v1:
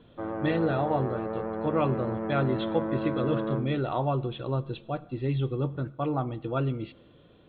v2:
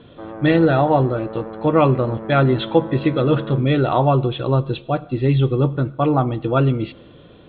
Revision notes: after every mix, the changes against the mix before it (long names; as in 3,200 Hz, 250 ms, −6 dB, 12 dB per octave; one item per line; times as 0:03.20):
speech +11.5 dB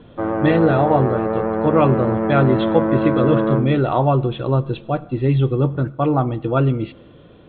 speech: add high-frequency loss of the air 190 metres
background +12.0 dB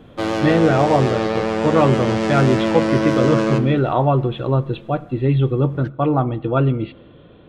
background: remove low-pass filter 1,500 Hz 24 dB per octave